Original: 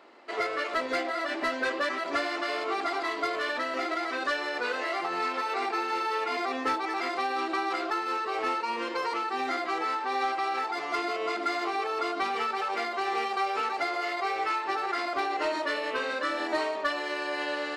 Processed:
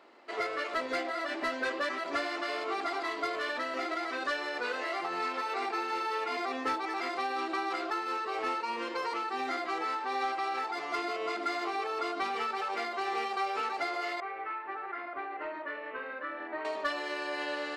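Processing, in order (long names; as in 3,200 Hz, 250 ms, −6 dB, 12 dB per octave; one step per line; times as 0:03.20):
0:14.20–0:16.65: transistor ladder low-pass 2,500 Hz, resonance 30%
level −3.5 dB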